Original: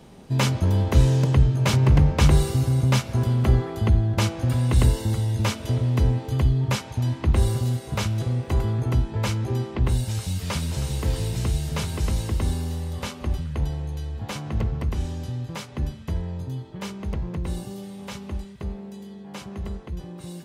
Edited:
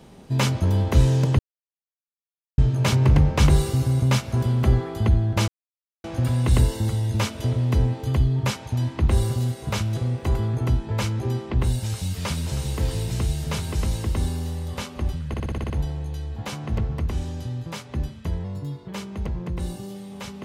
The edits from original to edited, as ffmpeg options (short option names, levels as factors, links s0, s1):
-filter_complex "[0:a]asplit=12[s0][s1][s2][s3][s4][s5][s6][s7][s8][s9][s10][s11];[s0]atrim=end=1.39,asetpts=PTS-STARTPTS,afade=t=out:st=1.386:d=0.004:c=hsin,apad=pad_dur=1.19[s12];[s1]atrim=start=1.39:end=4.29,asetpts=PTS-STARTPTS,afade=t=in:d=0.004:c=hsin,afade=t=out:st=2.896:d=0.004:c=hsin,apad=pad_dur=0.56[s13];[s2]atrim=start=4.29:end=13.592,asetpts=PTS-STARTPTS,afade=t=in:d=0.004:c=hsin[s14];[s3]atrim=start=13.528:end=13.592[s15];[s4]atrim=start=13.528:end=13.592[s16];[s5]atrim=start=13.528:end=13.592[s17];[s6]atrim=start=13.528:end=13.592[s18];[s7]atrim=start=13.528:end=13.592[s19];[s8]atrim=start=13.528:end=13.592[s20];[s9]atrim=start=13.528:end=16.274[s21];[s10]atrim=start=16.27:end=16.76,asetpts=PTS-STARTPTS,asetrate=48510,aresample=44100[s22];[s11]atrim=start=16.756[s23];[s12][s13][s14]concat=n=3:v=0:a=1[s24];[s24][s15]acrossfade=d=0.004:c1=hsin:c2=hsin[s25];[s25][s16]acrossfade=d=0.004:c1=hsin:c2=hsin[s26];[s26][s17]acrossfade=d=0.004:c1=hsin:c2=hsin[s27];[s27][s18]acrossfade=d=0.004:c1=hsin:c2=hsin[s28];[s28][s19]acrossfade=d=0.004:c1=hsin:c2=hsin[s29];[s29][s20]acrossfade=d=0.004:c1=hsin:c2=hsin[s30];[s30][s21]acrossfade=d=0.004:c1=hsin:c2=hsin[s31];[s31][s22]acrossfade=d=0.004:c1=hsin:c2=hsin[s32];[s32][s23]acrossfade=d=0.004:c1=hsin:c2=hsin"